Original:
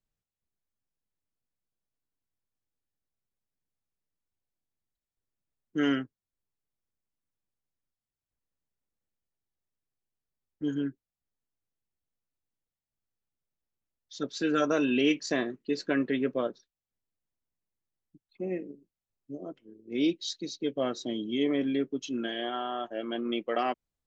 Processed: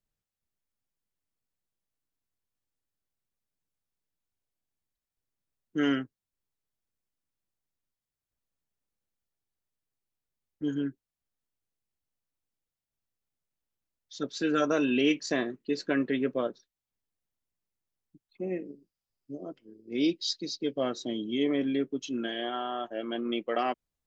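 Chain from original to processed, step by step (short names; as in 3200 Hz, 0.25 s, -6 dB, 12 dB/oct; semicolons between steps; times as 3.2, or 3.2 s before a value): 18.65–20.9 bell 4900 Hz +11 dB 0.21 oct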